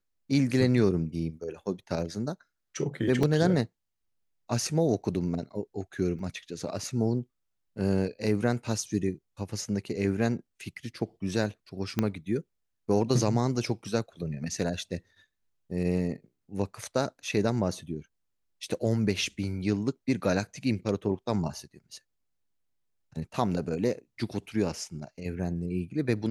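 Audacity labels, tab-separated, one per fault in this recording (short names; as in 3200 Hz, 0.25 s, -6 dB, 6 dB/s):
3.230000	3.230000	gap 3 ms
6.190000	6.190000	gap 2.4 ms
11.990000	11.990000	pop -12 dBFS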